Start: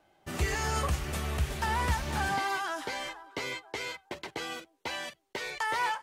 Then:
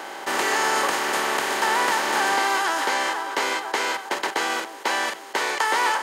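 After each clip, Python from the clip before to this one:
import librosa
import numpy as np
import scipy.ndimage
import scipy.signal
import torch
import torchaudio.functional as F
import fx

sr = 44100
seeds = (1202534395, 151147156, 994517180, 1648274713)

y = fx.bin_compress(x, sr, power=0.4)
y = scipy.signal.sosfilt(scipy.signal.butter(4, 280.0, 'highpass', fs=sr, output='sos'), y)
y = y * 10.0 ** (5.0 / 20.0)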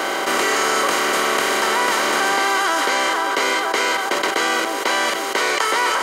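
y = fx.notch_comb(x, sr, f0_hz=860.0)
y = fx.env_flatten(y, sr, amount_pct=70)
y = y * 10.0 ** (4.0 / 20.0)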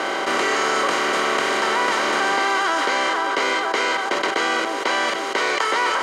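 y = fx.air_absorb(x, sr, metres=68.0)
y = y * 10.0 ** (-1.0 / 20.0)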